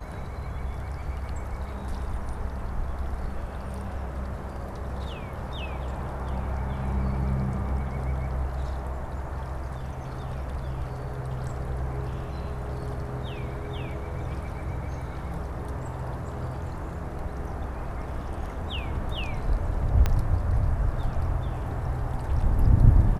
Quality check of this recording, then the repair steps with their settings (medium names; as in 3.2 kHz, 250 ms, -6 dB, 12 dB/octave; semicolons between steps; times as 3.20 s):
20.06 s: pop -11 dBFS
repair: de-click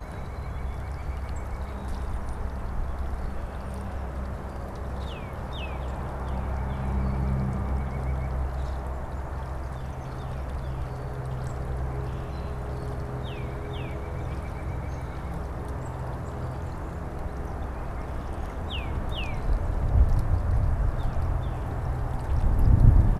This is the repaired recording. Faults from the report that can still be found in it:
20.06 s: pop